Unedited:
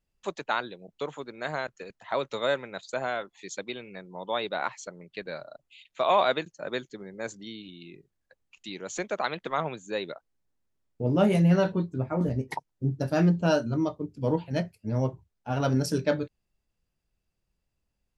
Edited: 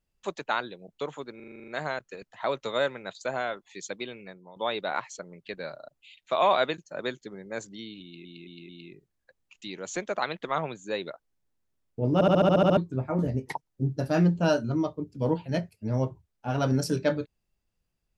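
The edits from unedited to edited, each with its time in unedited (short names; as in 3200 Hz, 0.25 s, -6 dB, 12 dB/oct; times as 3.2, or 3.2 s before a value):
1.36 stutter 0.04 s, 9 plays
3.86–4.24 fade out, to -14 dB
7.71 stutter 0.22 s, 4 plays
11.16 stutter in place 0.07 s, 9 plays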